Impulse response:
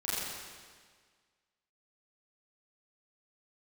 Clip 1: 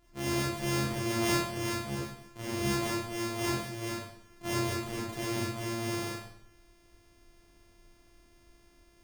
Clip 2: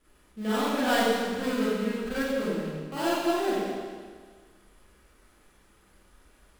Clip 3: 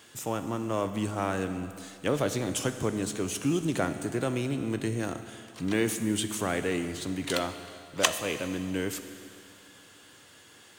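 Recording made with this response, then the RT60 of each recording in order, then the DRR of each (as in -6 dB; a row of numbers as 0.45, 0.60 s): 2; 0.70, 1.7, 2.5 s; -6.5, -11.5, 8.5 dB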